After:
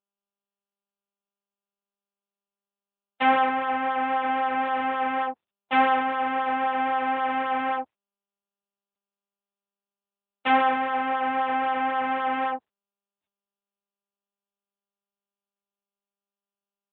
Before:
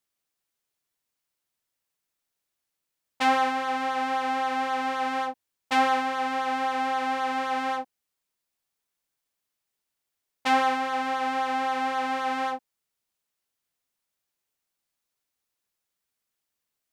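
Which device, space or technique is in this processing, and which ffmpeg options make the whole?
mobile call with aggressive noise cancelling: -af "highpass=frequency=160:width=0.5412,highpass=frequency=160:width=1.3066,afftdn=noise_reduction=19:noise_floor=-43,volume=2.5dB" -ar 8000 -c:a libopencore_amrnb -b:a 10200

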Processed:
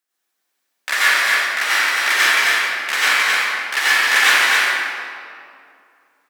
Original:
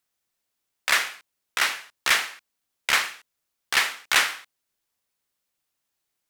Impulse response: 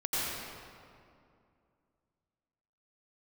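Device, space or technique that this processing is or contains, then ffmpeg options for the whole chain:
stadium PA: -filter_complex "[0:a]highpass=frequency=220:width=0.5412,highpass=frequency=220:width=1.3066,equalizer=frequency=1700:width_type=o:width=0.31:gain=5.5,aecho=1:1:186.6|265.3:0.251|0.631[link_01];[1:a]atrim=start_sample=2205[link_02];[link_01][link_02]afir=irnorm=-1:irlink=0,volume=-1dB"

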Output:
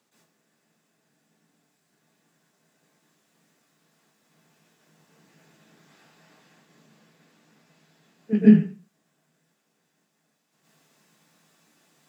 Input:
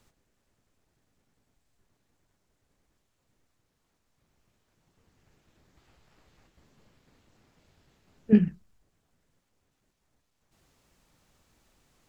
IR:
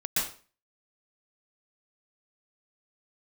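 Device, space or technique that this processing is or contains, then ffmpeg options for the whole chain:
far laptop microphone: -filter_complex "[1:a]atrim=start_sample=2205[link_01];[0:a][link_01]afir=irnorm=-1:irlink=0,highpass=frequency=170:width=0.5412,highpass=frequency=170:width=1.3066,dynaudnorm=framelen=240:gausssize=21:maxgain=5dB,volume=-2dB"

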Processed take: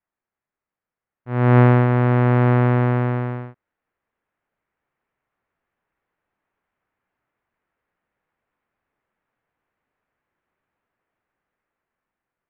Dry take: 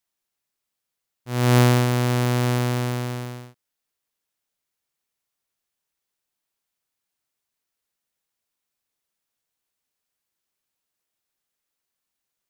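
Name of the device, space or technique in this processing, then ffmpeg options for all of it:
action camera in a waterproof case: -af "lowpass=frequency=2000:width=0.5412,lowpass=frequency=2000:width=1.3066,dynaudnorm=framelen=960:gausssize=5:maxgain=10dB,volume=2dB" -ar 44100 -c:a aac -b:a 128k

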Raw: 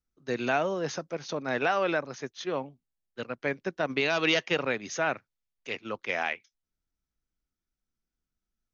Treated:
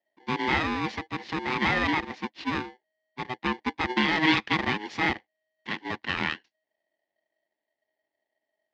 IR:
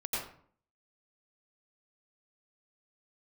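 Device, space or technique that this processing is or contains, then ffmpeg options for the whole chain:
ring modulator pedal into a guitar cabinet: -af "aeval=exprs='val(0)*sgn(sin(2*PI*630*n/s))':channel_layout=same,highpass=78,equalizer=frequency=120:width_type=q:width=4:gain=-4,equalizer=frequency=220:width_type=q:width=4:gain=7,equalizer=frequency=320:width_type=q:width=4:gain=10,equalizer=frequency=850:width_type=q:width=4:gain=5,equalizer=frequency=1300:width_type=q:width=4:gain=-7,equalizer=frequency=1900:width_type=q:width=4:gain=9,lowpass=frequency=4400:width=0.5412,lowpass=frequency=4400:width=1.3066"

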